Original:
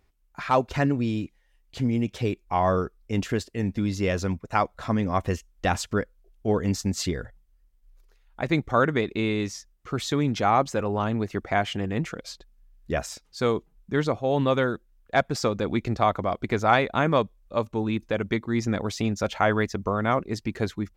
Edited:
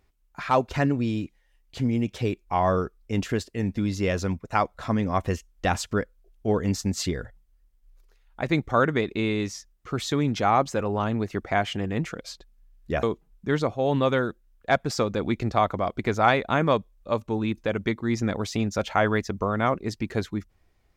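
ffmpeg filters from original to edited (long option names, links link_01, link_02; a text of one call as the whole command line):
ffmpeg -i in.wav -filter_complex "[0:a]asplit=2[link_01][link_02];[link_01]atrim=end=13.032[link_03];[link_02]atrim=start=13.478[link_04];[link_03][link_04]acrossfade=duration=0.004:curve1=hsin:curve2=hsin" out.wav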